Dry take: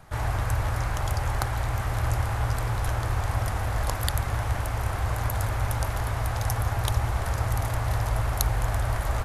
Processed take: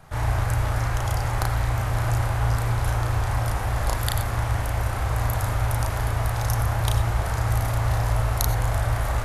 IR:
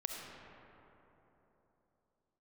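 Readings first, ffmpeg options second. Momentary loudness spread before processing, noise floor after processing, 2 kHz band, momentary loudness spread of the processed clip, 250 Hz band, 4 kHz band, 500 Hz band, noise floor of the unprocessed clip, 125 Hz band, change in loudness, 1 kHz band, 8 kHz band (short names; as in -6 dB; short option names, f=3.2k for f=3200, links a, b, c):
2 LU, -27 dBFS, +2.5 dB, 2 LU, +3.0 dB, +2.5 dB, +2.5 dB, -30 dBFS, +3.5 dB, +3.0 dB, +2.5 dB, +2.5 dB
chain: -filter_complex "[0:a]asplit=2[a][b];[1:a]atrim=start_sample=2205,atrim=end_sample=4410,adelay=34[c];[b][c]afir=irnorm=-1:irlink=0,volume=0dB[d];[a][d]amix=inputs=2:normalize=0"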